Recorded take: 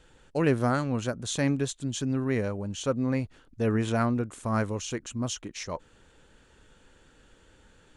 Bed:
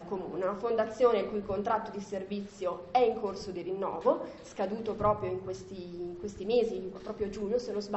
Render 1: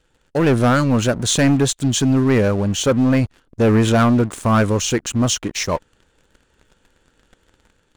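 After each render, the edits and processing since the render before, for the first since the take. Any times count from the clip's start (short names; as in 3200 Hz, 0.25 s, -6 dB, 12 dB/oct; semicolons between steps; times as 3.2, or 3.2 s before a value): sample leveller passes 3; AGC gain up to 3.5 dB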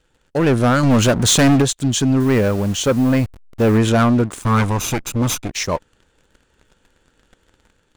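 0.83–1.62 sample leveller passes 2; 2.2–3.78 level-crossing sampler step -33.5 dBFS; 4.42–5.51 minimum comb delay 0.82 ms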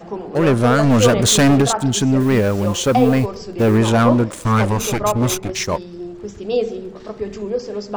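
add bed +8 dB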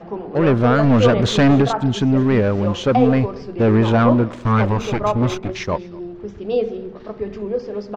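air absorption 220 m; echo 0.233 s -23.5 dB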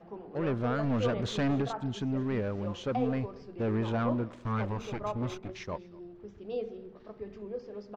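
gain -15.5 dB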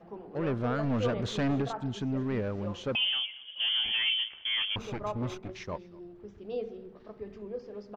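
2.95–4.76 inverted band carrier 3300 Hz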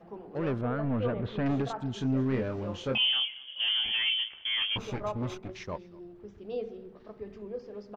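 0.61–1.46 air absorption 420 m; 1.96–3.74 doubler 23 ms -4.5 dB; 4.6–5.09 doubler 16 ms -5 dB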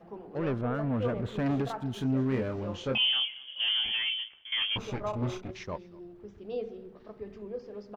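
0.74–2.54 running maximum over 3 samples; 3.85–4.52 fade out, to -14.5 dB; 5.1–5.51 doubler 33 ms -5 dB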